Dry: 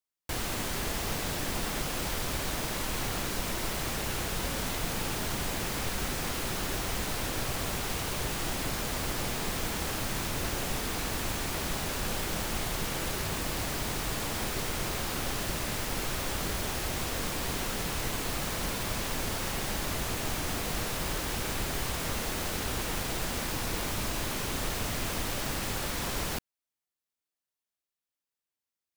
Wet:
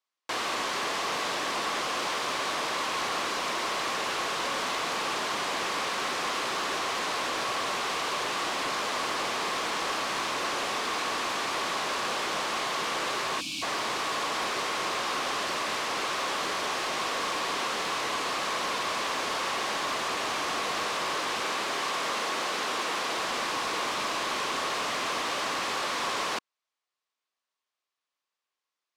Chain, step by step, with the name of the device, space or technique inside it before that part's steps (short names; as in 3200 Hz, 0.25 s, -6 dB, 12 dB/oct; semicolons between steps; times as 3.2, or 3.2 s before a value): 13.4–13.63 spectral gain 340–2200 Hz -27 dB; intercom (BPF 410–4400 Hz; bell 1100 Hz +9 dB 0.24 oct; soft clip -30 dBFS, distortion -18 dB); 21.43–23.18 HPF 130 Hz 12 dB/oct; high shelf 5300 Hz +5.5 dB; gain +6.5 dB